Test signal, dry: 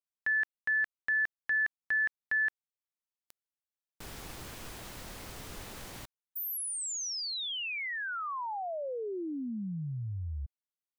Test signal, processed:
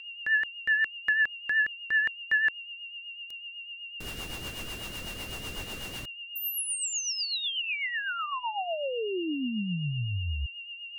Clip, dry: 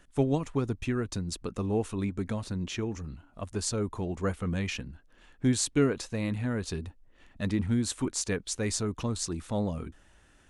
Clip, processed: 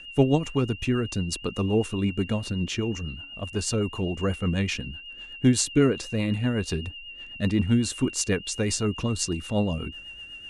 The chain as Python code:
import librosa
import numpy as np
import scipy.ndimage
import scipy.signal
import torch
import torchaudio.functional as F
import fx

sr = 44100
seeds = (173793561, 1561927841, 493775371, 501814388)

y = x + 10.0 ** (-43.0 / 20.0) * np.sin(2.0 * np.pi * 2800.0 * np.arange(len(x)) / sr)
y = fx.rotary(y, sr, hz=8.0)
y = y * 10.0 ** (6.5 / 20.0)